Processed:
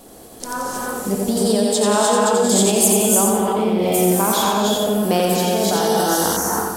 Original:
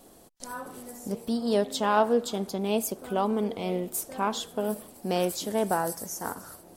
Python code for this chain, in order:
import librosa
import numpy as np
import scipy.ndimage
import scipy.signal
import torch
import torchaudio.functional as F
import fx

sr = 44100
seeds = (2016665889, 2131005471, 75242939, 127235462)

p1 = fx.rev_gated(x, sr, seeds[0], gate_ms=350, shape='rising', drr_db=-2.5)
p2 = fx.over_compress(p1, sr, threshold_db=-27.0, ratio=-0.5)
p3 = p1 + (p2 * librosa.db_to_amplitude(2.5))
p4 = fx.peak_eq(p3, sr, hz=8400.0, db=13.5, octaves=0.95, at=(1.37, 3.24))
p5 = p4 + fx.echo_feedback(p4, sr, ms=88, feedback_pct=45, wet_db=-4, dry=0)
y = fx.spec_paint(p5, sr, seeds[1], shape='noise', start_s=5.73, length_s=0.64, low_hz=2800.0, high_hz=6300.0, level_db=-31.0)